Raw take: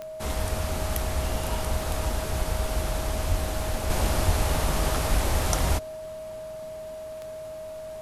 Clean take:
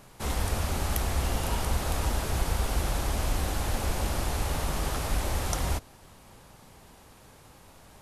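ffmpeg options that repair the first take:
-filter_complex "[0:a]adeclick=t=4,bandreject=f=630:w=30,asplit=3[a][b][c];[a]afade=t=out:st=3.28:d=0.02[d];[b]highpass=f=140:w=0.5412,highpass=f=140:w=1.3066,afade=t=in:st=3.28:d=0.02,afade=t=out:st=3.4:d=0.02[e];[c]afade=t=in:st=3.4:d=0.02[f];[d][e][f]amix=inputs=3:normalize=0,asplit=3[g][h][i];[g]afade=t=out:st=4.25:d=0.02[j];[h]highpass=f=140:w=0.5412,highpass=f=140:w=1.3066,afade=t=in:st=4.25:d=0.02,afade=t=out:st=4.37:d=0.02[k];[i]afade=t=in:st=4.37:d=0.02[l];[j][k][l]amix=inputs=3:normalize=0,asetnsamples=n=441:p=0,asendcmd='3.9 volume volume -4.5dB',volume=0dB"

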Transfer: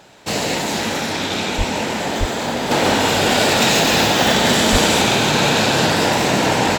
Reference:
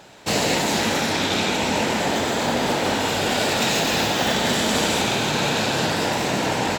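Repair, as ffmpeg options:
-filter_complex "[0:a]asplit=3[a][b][c];[a]afade=t=out:st=1.57:d=0.02[d];[b]highpass=f=140:w=0.5412,highpass=f=140:w=1.3066,afade=t=in:st=1.57:d=0.02,afade=t=out:st=1.69:d=0.02[e];[c]afade=t=in:st=1.69:d=0.02[f];[d][e][f]amix=inputs=3:normalize=0,asplit=3[g][h][i];[g]afade=t=out:st=2.19:d=0.02[j];[h]highpass=f=140:w=0.5412,highpass=f=140:w=1.3066,afade=t=in:st=2.19:d=0.02,afade=t=out:st=2.31:d=0.02[k];[i]afade=t=in:st=2.31:d=0.02[l];[j][k][l]amix=inputs=3:normalize=0,asplit=3[m][n][o];[m]afade=t=out:st=4.71:d=0.02[p];[n]highpass=f=140:w=0.5412,highpass=f=140:w=1.3066,afade=t=in:st=4.71:d=0.02,afade=t=out:st=4.83:d=0.02[q];[o]afade=t=in:st=4.83:d=0.02[r];[p][q][r]amix=inputs=3:normalize=0,asetnsamples=n=441:p=0,asendcmd='2.71 volume volume -6dB',volume=0dB"

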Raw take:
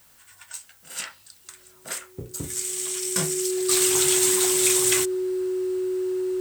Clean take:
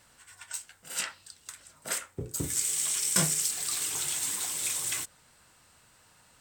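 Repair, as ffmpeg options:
-af "bandreject=f=370:w=30,agate=range=-21dB:threshold=-46dB,asetnsamples=n=441:p=0,asendcmd='3.69 volume volume -10.5dB',volume=0dB"

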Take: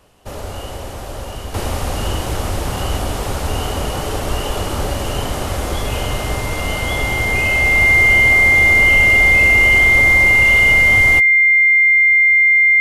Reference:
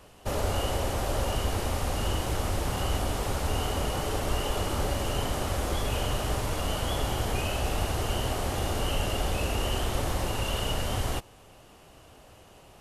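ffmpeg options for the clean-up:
-af "bandreject=f=2.1k:w=30,asetnsamples=n=441:p=0,asendcmd='1.54 volume volume -8dB',volume=0dB"

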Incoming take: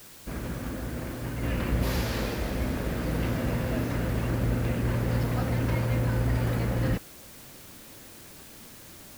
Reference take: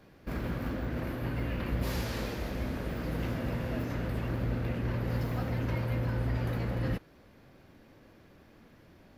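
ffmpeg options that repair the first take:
-af "afwtdn=0.0035,asetnsamples=n=441:p=0,asendcmd='1.43 volume volume -5dB',volume=0dB"

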